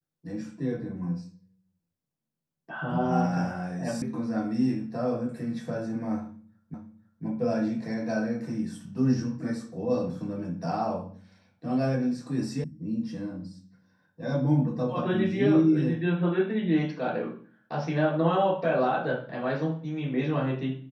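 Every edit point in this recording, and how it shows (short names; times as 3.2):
4.02 sound cut off
6.74 repeat of the last 0.5 s
12.64 sound cut off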